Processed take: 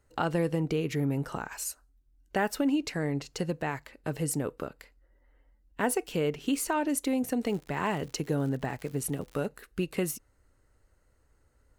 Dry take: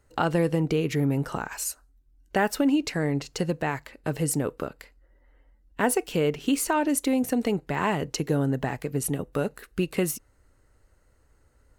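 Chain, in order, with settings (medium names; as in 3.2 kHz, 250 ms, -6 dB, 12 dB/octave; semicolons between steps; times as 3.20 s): 7.43–9.45 s: crackle 130 per s -35 dBFS; trim -4.5 dB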